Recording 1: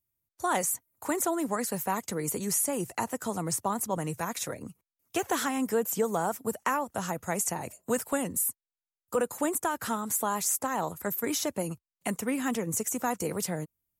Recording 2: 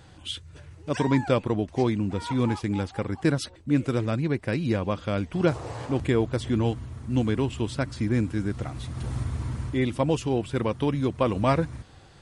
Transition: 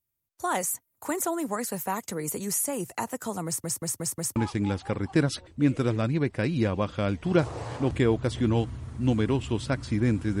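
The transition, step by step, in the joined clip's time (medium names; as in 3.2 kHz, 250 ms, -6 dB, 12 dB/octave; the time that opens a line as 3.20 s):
recording 1
3.46 s: stutter in place 0.18 s, 5 plays
4.36 s: go over to recording 2 from 2.45 s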